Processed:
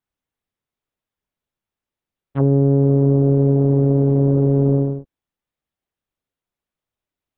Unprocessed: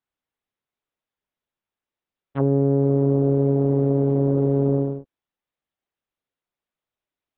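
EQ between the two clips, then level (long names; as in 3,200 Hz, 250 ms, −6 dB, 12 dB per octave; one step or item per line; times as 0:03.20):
low-shelf EQ 220 Hz +8.5 dB
0.0 dB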